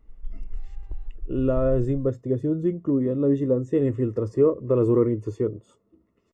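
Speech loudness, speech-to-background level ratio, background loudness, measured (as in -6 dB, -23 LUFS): -24.0 LUFS, 16.5 dB, -40.5 LUFS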